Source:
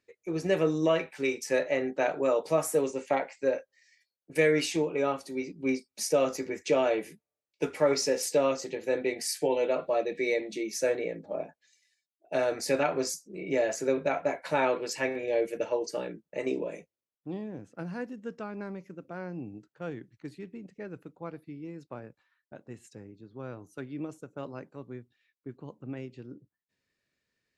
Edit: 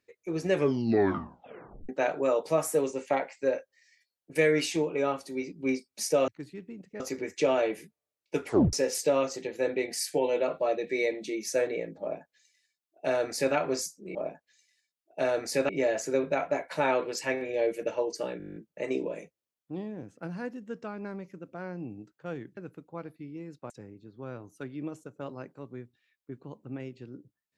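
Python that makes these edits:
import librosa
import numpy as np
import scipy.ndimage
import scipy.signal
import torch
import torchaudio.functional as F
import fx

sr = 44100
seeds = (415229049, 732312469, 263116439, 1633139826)

y = fx.edit(x, sr, fx.tape_stop(start_s=0.5, length_s=1.39),
    fx.tape_stop(start_s=7.76, length_s=0.25),
    fx.duplicate(start_s=11.29, length_s=1.54, to_s=13.43),
    fx.stutter(start_s=16.12, slice_s=0.02, count=10),
    fx.move(start_s=20.13, length_s=0.72, to_s=6.28),
    fx.cut(start_s=21.98, length_s=0.89), tone=tone)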